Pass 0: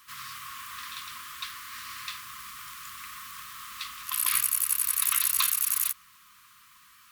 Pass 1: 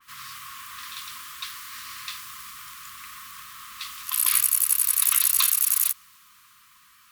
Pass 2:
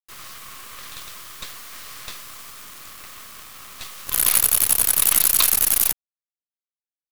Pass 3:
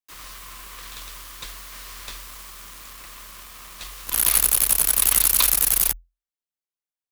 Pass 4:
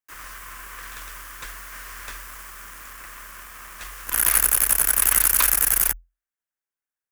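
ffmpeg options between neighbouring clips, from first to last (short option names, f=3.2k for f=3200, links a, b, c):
-af "adynamicequalizer=threshold=0.00708:dfrequency=3100:dqfactor=0.7:tfrequency=3100:tqfactor=0.7:attack=5:release=100:ratio=0.375:range=2.5:mode=boostabove:tftype=highshelf"
-af "acrusher=bits=4:dc=4:mix=0:aa=0.000001,volume=3.5dB"
-af "afreqshift=-43,volume=-1dB"
-af "equalizer=f=160:t=o:w=0.67:g=-4,equalizer=f=1.6k:t=o:w=0.67:g=9,equalizer=f=4k:t=o:w=0.67:g=-9"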